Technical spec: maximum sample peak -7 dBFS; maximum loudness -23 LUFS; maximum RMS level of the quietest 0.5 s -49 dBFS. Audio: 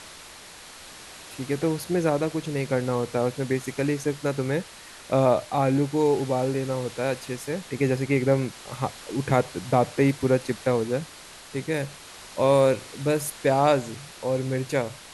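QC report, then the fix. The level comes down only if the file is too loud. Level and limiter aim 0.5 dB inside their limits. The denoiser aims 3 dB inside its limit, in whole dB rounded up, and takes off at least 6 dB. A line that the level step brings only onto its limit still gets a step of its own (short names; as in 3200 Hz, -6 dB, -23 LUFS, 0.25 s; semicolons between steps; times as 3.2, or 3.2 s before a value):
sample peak -6.0 dBFS: fail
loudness -25.5 LUFS: OK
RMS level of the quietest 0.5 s -45 dBFS: fail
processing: denoiser 7 dB, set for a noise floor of -45 dBFS; limiter -7.5 dBFS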